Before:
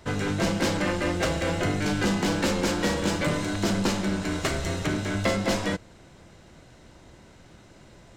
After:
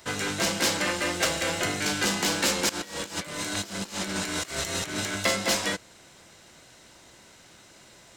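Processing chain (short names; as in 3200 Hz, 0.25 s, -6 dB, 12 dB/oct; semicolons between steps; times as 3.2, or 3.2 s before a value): tilt +3 dB/oct; 2.69–5.14 negative-ratio compressor -32 dBFS, ratio -0.5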